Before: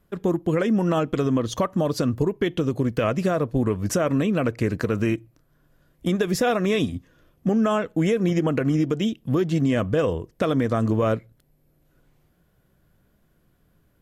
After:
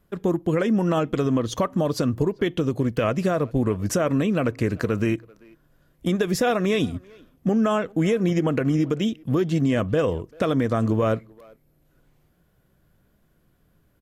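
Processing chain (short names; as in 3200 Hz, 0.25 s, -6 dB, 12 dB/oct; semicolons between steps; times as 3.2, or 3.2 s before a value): speakerphone echo 0.39 s, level -24 dB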